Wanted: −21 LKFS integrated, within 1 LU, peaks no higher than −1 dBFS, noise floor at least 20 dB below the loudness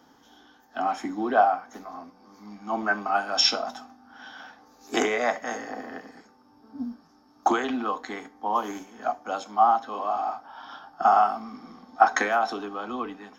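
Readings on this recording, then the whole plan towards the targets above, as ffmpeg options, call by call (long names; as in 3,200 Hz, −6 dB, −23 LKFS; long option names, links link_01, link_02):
integrated loudness −26.0 LKFS; sample peak −4.0 dBFS; target loudness −21.0 LKFS
→ -af "volume=5dB,alimiter=limit=-1dB:level=0:latency=1"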